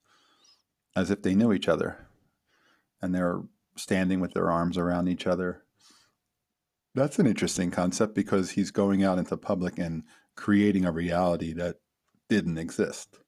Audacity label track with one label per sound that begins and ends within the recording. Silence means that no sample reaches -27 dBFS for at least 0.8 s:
0.970000	1.890000	sound
3.030000	5.510000	sound